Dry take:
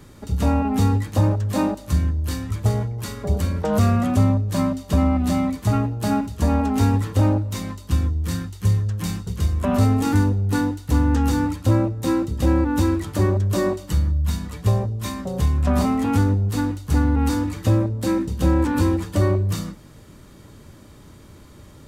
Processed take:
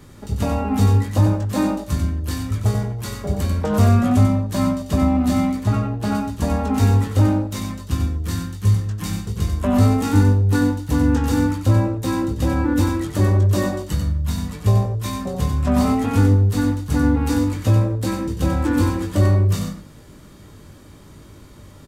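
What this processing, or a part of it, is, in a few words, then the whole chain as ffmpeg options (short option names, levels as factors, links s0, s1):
slapback doubling: -filter_complex "[0:a]asplit=3[s0][s1][s2];[s1]adelay=20,volume=0.501[s3];[s2]adelay=93,volume=0.501[s4];[s0][s3][s4]amix=inputs=3:normalize=0,asettb=1/sr,asplit=3[s5][s6][s7];[s5]atrim=end=5.634[s8];[s6]atrim=start=5.63:end=6.15,asetpts=PTS-STARTPTS,afade=t=in:d=0.004:c=qsin,afade=t=out:st=0.516:d=0.004:c=qsin,highshelf=f=5900:g=-9.5[s9];[s7]atrim=start=6.146[s10];[s8][s9]acrossfade=d=0.004:c1=hsin:c2=qsin[s11];[s11][s10]acrossfade=d=0.004:c1=qsin:c2=hsin"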